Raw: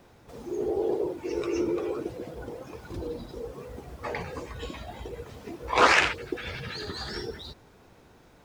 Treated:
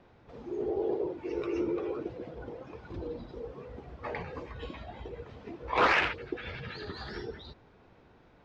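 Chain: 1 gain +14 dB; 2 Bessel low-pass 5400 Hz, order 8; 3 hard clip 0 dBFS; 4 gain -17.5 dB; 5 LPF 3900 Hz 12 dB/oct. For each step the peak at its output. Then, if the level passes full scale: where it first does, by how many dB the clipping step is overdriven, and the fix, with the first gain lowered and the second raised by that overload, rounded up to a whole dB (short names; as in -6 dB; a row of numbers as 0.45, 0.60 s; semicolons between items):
+11.0, +9.5, 0.0, -17.5, -17.0 dBFS; step 1, 9.5 dB; step 1 +4 dB, step 4 -7.5 dB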